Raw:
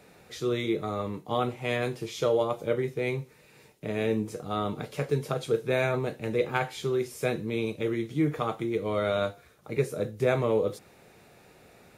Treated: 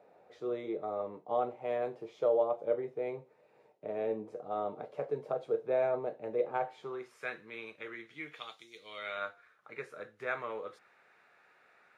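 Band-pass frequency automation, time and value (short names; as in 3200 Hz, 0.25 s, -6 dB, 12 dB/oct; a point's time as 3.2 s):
band-pass, Q 2.1
6.66 s 650 Hz
7.26 s 1600 Hz
8.05 s 1600 Hz
8.69 s 5600 Hz
9.25 s 1500 Hz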